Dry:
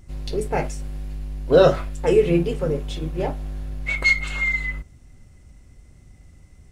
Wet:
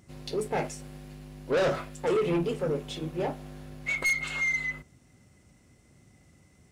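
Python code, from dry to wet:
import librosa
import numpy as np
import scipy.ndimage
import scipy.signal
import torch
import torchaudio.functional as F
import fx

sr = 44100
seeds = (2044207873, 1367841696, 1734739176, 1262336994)

y = scipy.signal.sosfilt(scipy.signal.butter(2, 140.0, 'highpass', fs=sr, output='sos'), x)
y = 10.0 ** (-19.5 / 20.0) * np.tanh(y / 10.0 ** (-19.5 / 20.0))
y = y * librosa.db_to_amplitude(-2.5)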